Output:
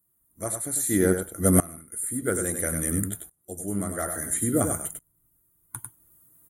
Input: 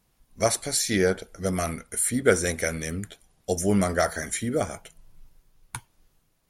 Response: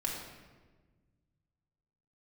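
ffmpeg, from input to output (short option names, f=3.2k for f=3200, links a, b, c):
-filter_complex "[0:a]superequalizer=6b=2.24:10b=1.58:12b=0.398:13b=0.562:14b=0.316,aexciter=amount=15.1:drive=1.5:freq=8.2k,highpass=78,asplit=2[a][b];[b]aecho=0:1:98:0.398[c];[a][c]amix=inputs=2:normalize=0,acrossover=split=6500[d][e];[e]acompressor=threshold=-19dB:ratio=4:attack=1:release=60[f];[d][f]amix=inputs=2:normalize=0,lowshelf=f=220:g=9,aeval=exprs='val(0)*pow(10,-22*if(lt(mod(-0.59*n/s,1),2*abs(-0.59)/1000),1-mod(-0.59*n/s,1)/(2*abs(-0.59)/1000),(mod(-0.59*n/s,1)-2*abs(-0.59)/1000)/(1-2*abs(-0.59)/1000))/20)':c=same,volume=2.5dB"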